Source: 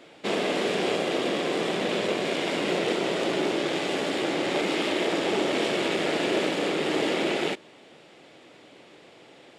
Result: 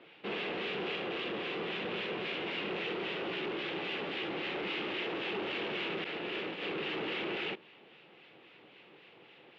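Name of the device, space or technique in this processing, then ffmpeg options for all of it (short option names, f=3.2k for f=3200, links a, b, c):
guitar amplifier with harmonic tremolo: -filter_complex "[0:a]asettb=1/sr,asplit=3[a][b][c];[a]atrim=end=6.044[d];[b]atrim=start=6.04:end=6.62,asetpts=PTS-STARTPTS,afade=t=in:d=0.004:c=qsin,afade=t=out:st=0.576:d=0.004:c=qsin,agate=range=-33dB:threshold=-21dB:ratio=3:detection=peak[e];[c]atrim=start=6.616[f];[d][e]acrossfade=d=0.004:c1=hsin:c2=qsin[g];[g][f]acrossfade=d=0.004:c1=qsin:c2=hsin,acrossover=split=1300[h][i];[h]aeval=exprs='val(0)*(1-0.5/2+0.5/2*cos(2*PI*3.7*n/s))':c=same[j];[i]aeval=exprs='val(0)*(1-0.5/2-0.5/2*cos(2*PI*3.7*n/s))':c=same[k];[j][k]amix=inputs=2:normalize=0,asoftclip=type=tanh:threshold=-28dB,highpass=110,equalizer=f=270:t=q:w=4:g=-7,equalizer=f=620:t=q:w=4:g=-8,equalizer=f=2.7k:t=q:w=4:g=6,lowpass=f=3.6k:w=0.5412,lowpass=f=3.6k:w=1.3066,volume=-3dB"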